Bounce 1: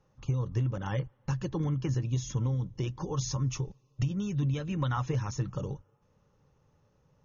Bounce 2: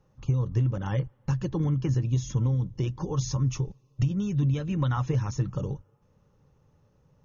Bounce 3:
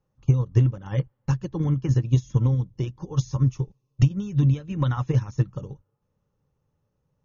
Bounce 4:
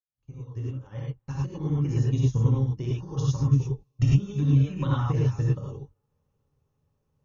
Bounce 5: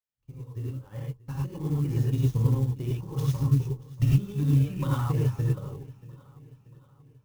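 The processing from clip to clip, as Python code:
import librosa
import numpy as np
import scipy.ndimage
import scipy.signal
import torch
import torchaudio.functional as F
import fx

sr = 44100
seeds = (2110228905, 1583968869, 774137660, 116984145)

y1 = fx.low_shelf(x, sr, hz=450.0, db=5.0)
y2 = fx.upward_expand(y1, sr, threshold_db=-33.0, expansion=2.5)
y2 = y2 * 10.0 ** (9.0 / 20.0)
y3 = fx.fade_in_head(y2, sr, length_s=2.29)
y3 = fx.rev_gated(y3, sr, seeds[0], gate_ms=130, shape='rising', drr_db=-5.0)
y3 = y3 * 10.0 ** (-6.5 / 20.0)
y4 = fx.echo_feedback(y3, sr, ms=633, feedback_pct=51, wet_db=-20.5)
y4 = fx.clock_jitter(y4, sr, seeds[1], jitter_ms=0.03)
y4 = y4 * 10.0 ** (-1.5 / 20.0)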